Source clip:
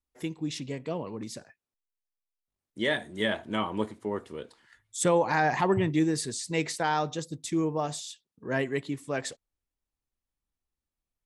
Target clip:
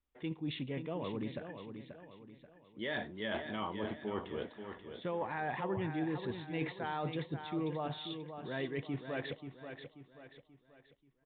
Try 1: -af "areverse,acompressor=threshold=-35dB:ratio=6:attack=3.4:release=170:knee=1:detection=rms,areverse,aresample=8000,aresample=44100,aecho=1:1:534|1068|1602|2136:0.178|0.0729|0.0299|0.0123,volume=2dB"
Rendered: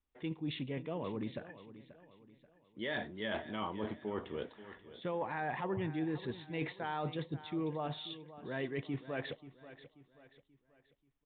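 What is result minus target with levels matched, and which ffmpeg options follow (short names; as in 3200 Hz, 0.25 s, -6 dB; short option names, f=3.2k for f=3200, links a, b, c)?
echo-to-direct -6.5 dB
-af "areverse,acompressor=threshold=-35dB:ratio=6:attack=3.4:release=170:knee=1:detection=rms,areverse,aresample=8000,aresample=44100,aecho=1:1:534|1068|1602|2136|2670:0.376|0.154|0.0632|0.0259|0.0106,volume=2dB"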